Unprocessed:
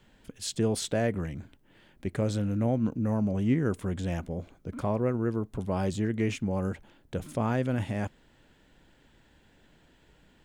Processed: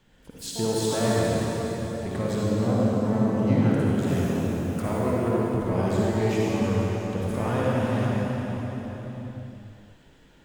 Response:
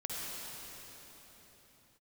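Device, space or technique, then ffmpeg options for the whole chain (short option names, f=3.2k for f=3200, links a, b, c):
shimmer-style reverb: -filter_complex "[0:a]asettb=1/sr,asplit=3[a][b][c];[a]atrim=end=4.024[d];[b]atrim=start=4.02:end=4.89,asetpts=PTS-STARTPTS,afade=t=in:d=0.004:c=qsin,afade=t=out:st=0.866:d=0.004:c=qsin,aemphasis=mode=production:type=50fm[e];[c]atrim=start=4.886[f];[d][e]acrossfade=d=0.004:c1=hsin:c2=qsin[g];[g][f]acrossfade=d=0.004:c1=qsin:c2=hsin,asplit=2[h][i];[i]asetrate=88200,aresample=44100,atempo=0.5,volume=-11dB[j];[h][j]amix=inputs=2:normalize=0[k];[1:a]atrim=start_sample=2205[l];[k][l]afir=irnorm=-1:irlink=0,volume=1.5dB"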